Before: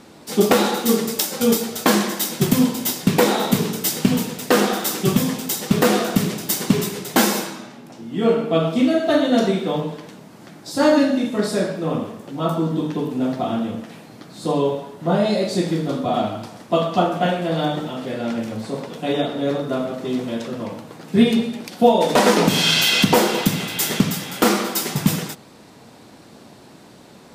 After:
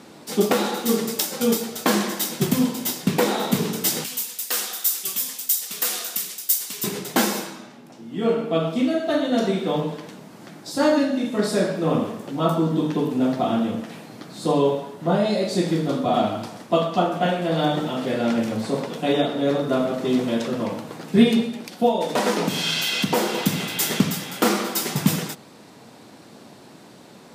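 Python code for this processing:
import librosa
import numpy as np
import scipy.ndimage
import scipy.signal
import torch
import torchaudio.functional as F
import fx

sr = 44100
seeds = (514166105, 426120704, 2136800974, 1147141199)

y = fx.differentiator(x, sr, at=(4.04, 6.84))
y = scipy.signal.sosfilt(scipy.signal.butter(2, 110.0, 'highpass', fs=sr, output='sos'), y)
y = fx.rider(y, sr, range_db=5, speed_s=0.5)
y = F.gain(torch.from_numpy(y), -2.0).numpy()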